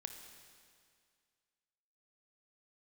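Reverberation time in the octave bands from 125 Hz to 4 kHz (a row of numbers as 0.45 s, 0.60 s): 2.1 s, 2.1 s, 2.1 s, 2.1 s, 2.1 s, 2.1 s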